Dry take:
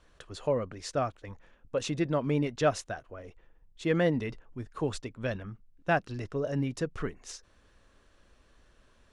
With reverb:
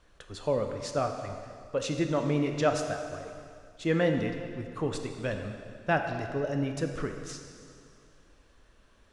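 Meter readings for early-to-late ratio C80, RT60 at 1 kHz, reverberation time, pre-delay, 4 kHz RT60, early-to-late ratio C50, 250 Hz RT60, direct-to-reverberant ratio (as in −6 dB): 7.0 dB, 2.3 s, 2.2 s, 8 ms, 2.1 s, 5.5 dB, 2.4 s, 4.5 dB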